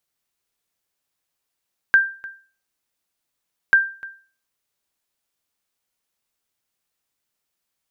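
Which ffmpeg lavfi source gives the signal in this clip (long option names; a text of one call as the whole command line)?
ffmpeg -f lavfi -i "aevalsrc='0.473*(sin(2*PI*1580*mod(t,1.79))*exp(-6.91*mod(t,1.79)/0.39)+0.0891*sin(2*PI*1580*max(mod(t,1.79)-0.3,0))*exp(-6.91*max(mod(t,1.79)-0.3,0)/0.39))':duration=3.58:sample_rate=44100" out.wav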